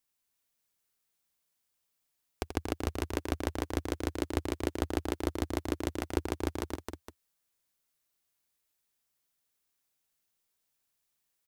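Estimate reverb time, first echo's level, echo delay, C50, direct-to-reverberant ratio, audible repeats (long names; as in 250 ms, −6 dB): no reverb audible, −8.5 dB, 84 ms, no reverb audible, no reverb audible, 4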